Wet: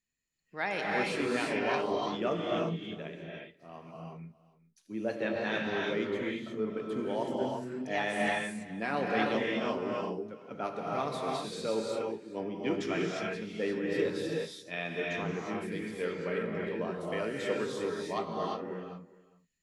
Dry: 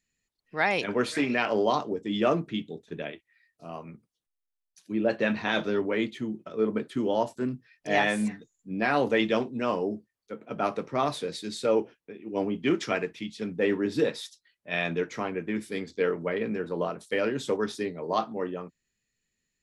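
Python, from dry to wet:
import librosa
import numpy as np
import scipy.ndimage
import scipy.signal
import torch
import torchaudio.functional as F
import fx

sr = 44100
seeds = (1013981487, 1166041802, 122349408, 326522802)

p1 = x + fx.echo_single(x, sr, ms=411, db=-20.0, dry=0)
p2 = fx.rev_gated(p1, sr, seeds[0], gate_ms=380, shape='rising', drr_db=-2.5)
y = p2 * librosa.db_to_amplitude(-8.5)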